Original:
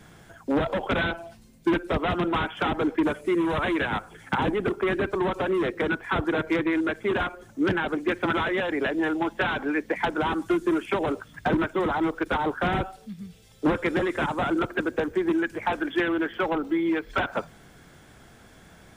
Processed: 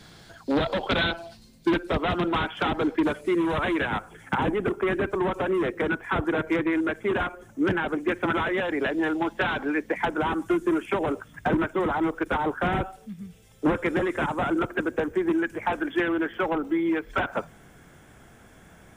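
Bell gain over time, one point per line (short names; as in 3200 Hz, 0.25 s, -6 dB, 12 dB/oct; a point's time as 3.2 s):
bell 4300 Hz 0.61 oct
1.19 s +14.5 dB
1.92 s +4 dB
3.1 s +4 dB
4.33 s -8 dB
8.38 s -8 dB
8.95 s -0.5 dB
9.64 s -0.5 dB
10.11 s -8.5 dB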